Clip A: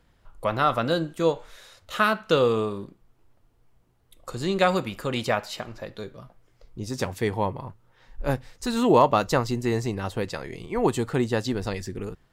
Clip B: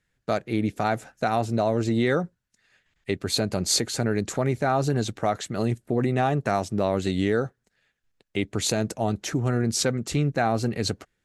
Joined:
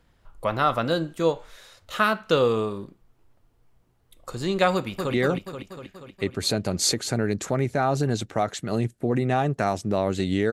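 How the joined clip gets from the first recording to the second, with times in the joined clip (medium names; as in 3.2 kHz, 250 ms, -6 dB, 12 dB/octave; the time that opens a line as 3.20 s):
clip A
4.74–5.14 s: echo throw 240 ms, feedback 65%, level -5 dB
5.14 s: go over to clip B from 2.01 s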